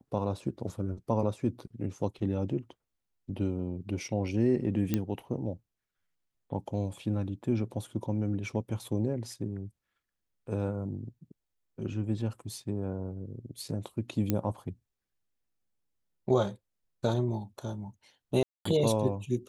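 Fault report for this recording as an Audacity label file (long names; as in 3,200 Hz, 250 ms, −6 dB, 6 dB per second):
4.940000	4.940000	click −14 dBFS
14.300000	14.300000	click −14 dBFS
18.430000	18.650000	drop-out 224 ms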